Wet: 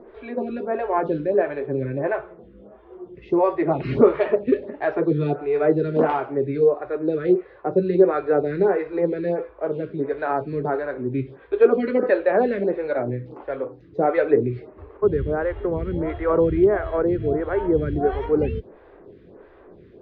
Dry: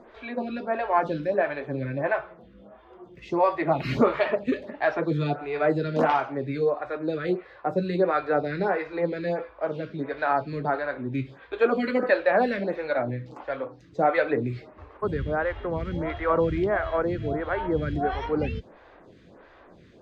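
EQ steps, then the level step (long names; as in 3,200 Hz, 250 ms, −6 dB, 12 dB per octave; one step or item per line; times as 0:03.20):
high-frequency loss of the air 250 metres
low-shelf EQ 160 Hz +6 dB
parametric band 400 Hz +12 dB 0.63 octaves
−1.0 dB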